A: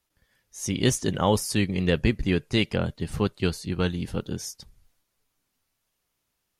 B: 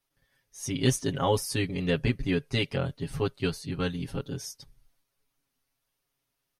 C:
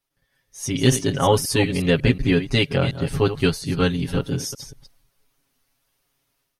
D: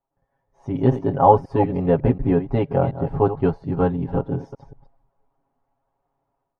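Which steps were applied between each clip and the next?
notch filter 7,200 Hz, Q 7.6; comb filter 7.3 ms, depth 97%; level −6 dB
delay that plays each chunk backwards 182 ms, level −11 dB; automatic gain control gain up to 9.5 dB
low-pass with resonance 830 Hz, resonance Q 3.4; level −1 dB

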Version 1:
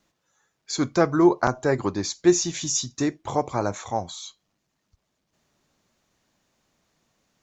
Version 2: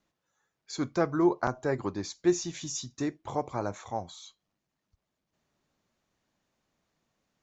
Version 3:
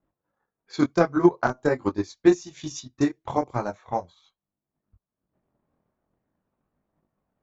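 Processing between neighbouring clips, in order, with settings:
high-shelf EQ 5,000 Hz −6.5 dB; level −7 dB
multi-voice chorus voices 2, 0.43 Hz, delay 22 ms, depth 2.2 ms; transient designer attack +8 dB, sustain −10 dB; low-pass that shuts in the quiet parts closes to 1,100 Hz, open at −27.5 dBFS; level +5.5 dB

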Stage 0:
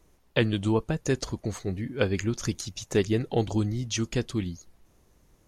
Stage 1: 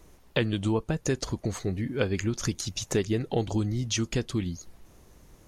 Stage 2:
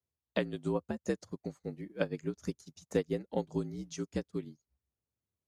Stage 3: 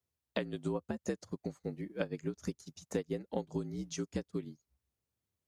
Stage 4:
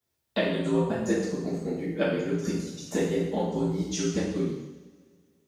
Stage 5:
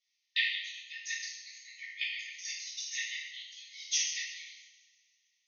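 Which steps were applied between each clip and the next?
downward compressor 2 to 1, threshold −38 dBFS, peak gain reduction 11 dB; level +7.5 dB
dynamic equaliser 3,000 Hz, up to −6 dB, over −50 dBFS, Q 1.3; frequency shifter +60 Hz; expander for the loud parts 2.5 to 1, over −47 dBFS; level −2 dB
downward compressor 2.5 to 1, threshold −36 dBFS, peak gain reduction 8.5 dB; level +2.5 dB
coupled-rooms reverb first 0.91 s, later 2.5 s, from −21 dB, DRR −9.5 dB; level +1.5 dB
linear-phase brick-wall band-pass 1,800–6,700 Hz; level +5.5 dB

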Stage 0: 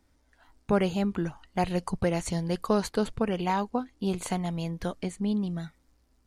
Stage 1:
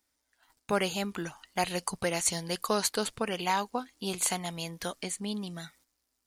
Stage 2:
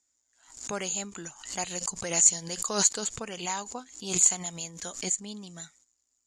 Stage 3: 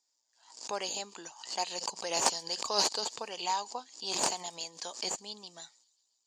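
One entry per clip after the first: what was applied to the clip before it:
noise gate −57 dBFS, range −10 dB; spectral tilt +3.5 dB per octave
low-pass with resonance 7,000 Hz, resonance Q 14; background raised ahead of every attack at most 100 dB per second; level −6.5 dB
stylus tracing distortion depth 0.16 ms; loudspeaker in its box 460–7,800 Hz, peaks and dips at 910 Hz +6 dB, 1,400 Hz −8 dB, 2,100 Hz −7 dB, 4,800 Hz +8 dB, 6,900 Hz −7 dB; delay with a high-pass on its return 135 ms, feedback 67%, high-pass 4,600 Hz, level −23.5 dB

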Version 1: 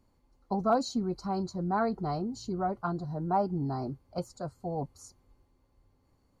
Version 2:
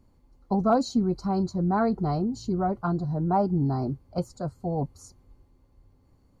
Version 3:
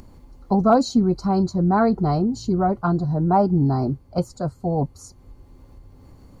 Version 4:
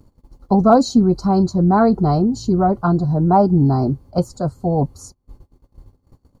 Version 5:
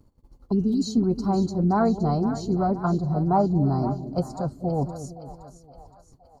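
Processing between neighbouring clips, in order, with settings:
low-shelf EQ 390 Hz +7.5 dB; level +1.5 dB
upward compression, threshold −42 dBFS; level +6 dB
noise gate −43 dBFS, range −26 dB; parametric band 2,200 Hz −7 dB 0.95 octaves; level +4.5 dB
healed spectral selection 0:00.54–0:00.83, 450–3,000 Hz after; on a send: echo with a time of its own for lows and highs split 620 Hz, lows 221 ms, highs 518 ms, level −11 dB; on the sum: level −7.5 dB

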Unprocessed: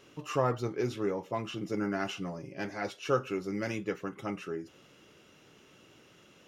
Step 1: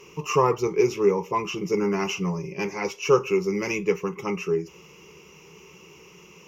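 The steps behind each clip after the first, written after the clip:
EQ curve with evenly spaced ripples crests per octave 0.78, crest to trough 16 dB
level +6 dB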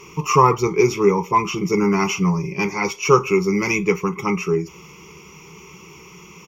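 comb filter 0.9 ms, depth 53%
level +6 dB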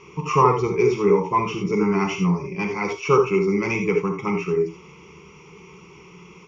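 high-frequency loss of the air 140 metres
reverb whose tail is shaped and stops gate 100 ms rising, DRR 4 dB
level −3.5 dB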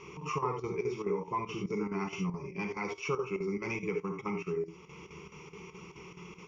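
downward compressor 2 to 1, threshold −37 dBFS, peak gain reduction 14 dB
square-wave tremolo 4.7 Hz, depth 65%, duty 80%
level −2.5 dB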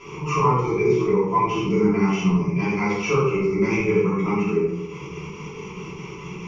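rectangular room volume 190 cubic metres, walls mixed, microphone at 3 metres
level +2.5 dB

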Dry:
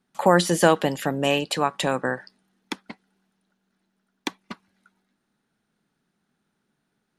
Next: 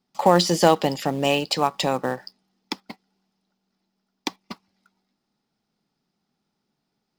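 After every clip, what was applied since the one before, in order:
thirty-one-band graphic EQ 800 Hz +4 dB, 1,600 Hz −9 dB, 5,000 Hz +11 dB, 10,000 Hz −11 dB
in parallel at −8 dB: log-companded quantiser 4 bits
on the sum: level −2.5 dB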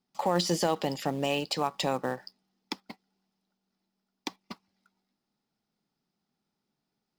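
brickwall limiter −9.5 dBFS, peak gain reduction 8 dB
level −6 dB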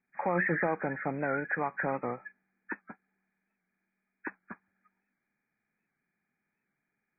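hearing-aid frequency compression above 1,200 Hz 4 to 1
wow of a warped record 78 rpm, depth 100 cents
level −3 dB

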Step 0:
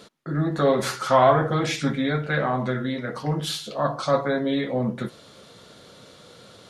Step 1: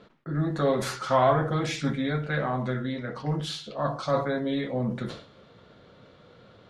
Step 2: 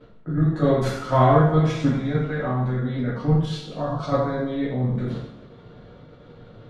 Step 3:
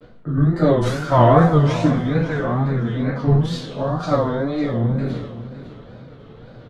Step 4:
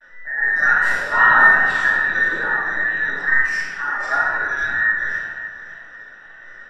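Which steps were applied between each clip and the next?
low-pass that shuts in the quiet parts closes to 2,300 Hz, open at −19.5 dBFS; low-shelf EQ 100 Hz +8 dB; level that may fall only so fast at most 110 dB per second; level −5 dB
spectral tilt −2.5 dB per octave; output level in coarse steps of 10 dB; coupled-rooms reverb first 0.59 s, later 2.1 s, from −18 dB, DRR −5 dB
tape wow and flutter 150 cents; repeating echo 554 ms, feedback 29%, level −14 dB; level +3.5 dB
frequency inversion band by band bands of 2,000 Hz; rectangular room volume 880 cubic metres, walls mixed, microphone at 2.5 metres; level −6 dB

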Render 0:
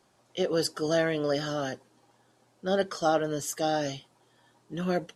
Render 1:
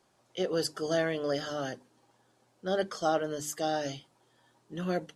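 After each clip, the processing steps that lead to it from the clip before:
mains-hum notches 50/100/150/200/250/300 Hz
level −3 dB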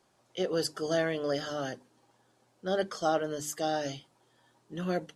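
no processing that can be heard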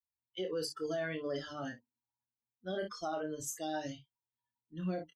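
spectral dynamics exaggerated over time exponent 2
on a send: ambience of single reflections 26 ms −7 dB, 55 ms −13.5 dB
on the sum: brickwall limiter −28.5 dBFS, peak gain reduction 11 dB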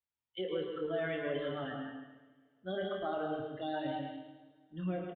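echo with a time of its own for lows and highs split 460 Hz, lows 147 ms, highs 107 ms, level −11 dB
convolution reverb, pre-delay 119 ms, DRR 3.5 dB
downsampling to 8,000 Hz

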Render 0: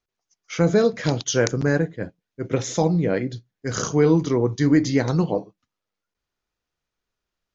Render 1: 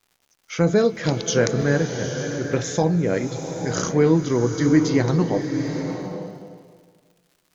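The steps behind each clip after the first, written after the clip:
surface crackle 180 per second −48 dBFS
slow-attack reverb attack 860 ms, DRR 6 dB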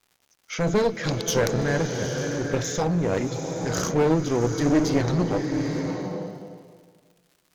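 asymmetric clip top −24.5 dBFS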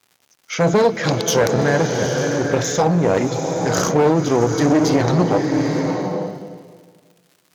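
high-pass filter 95 Hz
dynamic equaliser 790 Hz, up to +5 dB, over −39 dBFS, Q 1.1
boost into a limiter +11 dB
level −4.5 dB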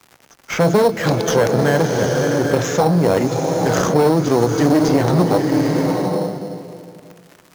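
in parallel at −5 dB: sample-rate reduction 4,800 Hz, jitter 0%
on the sum: multiband upward and downward compressor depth 40%
level −2.5 dB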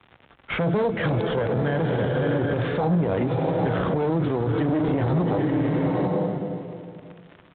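parametric band 64 Hz +8 dB 2.3 octaves
brickwall limiter −12 dBFS, peak gain reduction 11 dB
downsampling to 8,000 Hz
level −3 dB

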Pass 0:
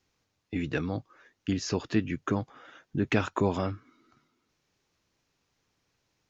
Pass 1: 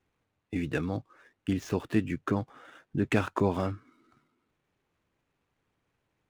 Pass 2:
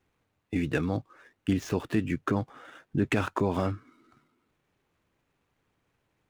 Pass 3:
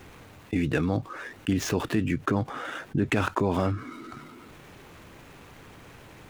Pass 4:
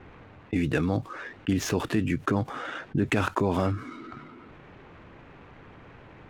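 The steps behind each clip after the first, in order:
running median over 9 samples
brickwall limiter −18.5 dBFS, peak gain reduction 6 dB; level +3 dB
envelope flattener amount 50%
low-pass that shuts in the quiet parts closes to 1,900 Hz, open at −25 dBFS

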